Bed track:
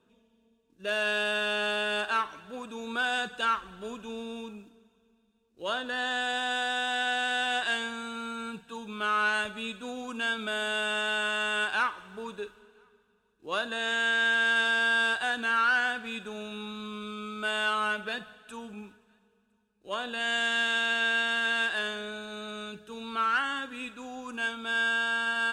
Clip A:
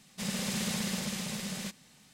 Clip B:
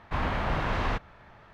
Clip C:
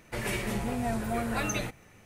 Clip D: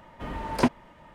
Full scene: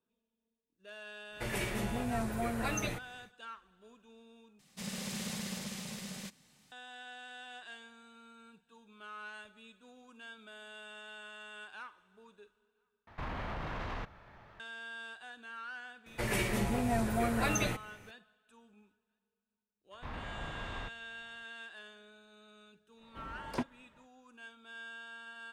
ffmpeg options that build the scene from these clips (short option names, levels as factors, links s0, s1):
-filter_complex "[3:a]asplit=2[s0][s1];[2:a]asplit=2[s2][s3];[0:a]volume=0.1[s4];[s2]alimiter=level_in=1.5:limit=0.0631:level=0:latency=1:release=34,volume=0.668[s5];[s4]asplit=3[s6][s7][s8];[s6]atrim=end=4.594[s9];[1:a]atrim=end=2.13,asetpts=PTS-STARTPTS,volume=0.473[s10];[s7]atrim=start=6.716:end=13.074[s11];[s5]atrim=end=1.53,asetpts=PTS-STARTPTS,volume=0.631[s12];[s8]atrim=start=14.596[s13];[s0]atrim=end=2.05,asetpts=PTS-STARTPTS,volume=0.631,afade=t=in:d=0.1,afade=t=out:st=1.95:d=0.1,adelay=1280[s14];[s1]atrim=end=2.05,asetpts=PTS-STARTPTS,volume=0.944,afade=t=in:d=0.004:c=hsin,afade=t=out:st=2.046:d=0.004:c=hsin,adelay=16060[s15];[s3]atrim=end=1.53,asetpts=PTS-STARTPTS,volume=0.188,afade=t=in:d=0.004:c=hsin,afade=t=out:st=1.526:d=0.004:c=hsin,adelay=19910[s16];[4:a]atrim=end=1.14,asetpts=PTS-STARTPTS,volume=0.211,afade=t=in:d=0.1,afade=t=out:st=1.04:d=0.1,adelay=22950[s17];[s9][s10]acrossfade=d=0.004:c1=hsin:c2=hsin[s18];[s18][s11]acrossfade=d=0.004:c1=hsin:c2=hsin[s19];[s19][s12]acrossfade=d=0.004:c1=hsin:c2=hsin[s20];[s20][s13]acrossfade=d=0.004:c1=hsin:c2=hsin[s21];[s21][s14][s15][s16][s17]amix=inputs=5:normalize=0"